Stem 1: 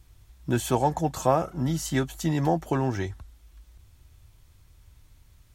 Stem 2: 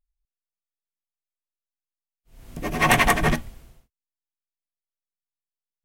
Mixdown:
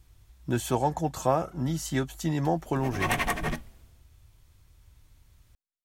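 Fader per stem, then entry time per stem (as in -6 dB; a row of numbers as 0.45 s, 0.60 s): -2.5 dB, -9.5 dB; 0.00 s, 0.20 s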